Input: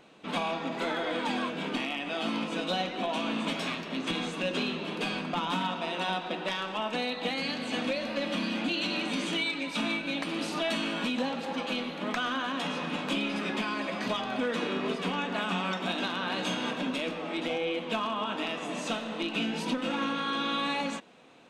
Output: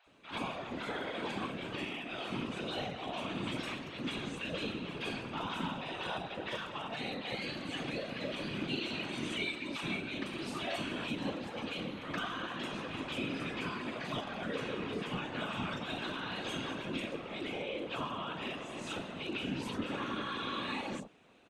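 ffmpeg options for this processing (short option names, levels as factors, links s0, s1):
-filter_complex "[0:a]acrossover=split=770|5200[s0][s1][s2];[s2]adelay=40[s3];[s0]adelay=70[s4];[s4][s1][s3]amix=inputs=3:normalize=0,afftfilt=real='hypot(re,im)*cos(2*PI*random(0))':imag='hypot(re,im)*sin(2*PI*random(1))':win_size=512:overlap=0.75"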